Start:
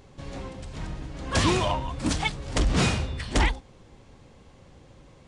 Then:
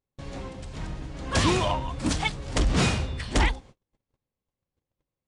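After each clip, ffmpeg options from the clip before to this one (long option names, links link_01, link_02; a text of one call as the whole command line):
ffmpeg -i in.wav -af "agate=range=-37dB:threshold=-45dB:ratio=16:detection=peak" out.wav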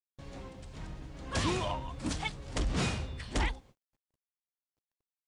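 ffmpeg -i in.wav -af "acrusher=bits=11:mix=0:aa=0.000001,volume=-8.5dB" out.wav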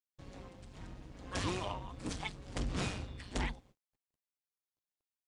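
ffmpeg -i in.wav -af "tremolo=f=190:d=0.75,volume=-2dB" out.wav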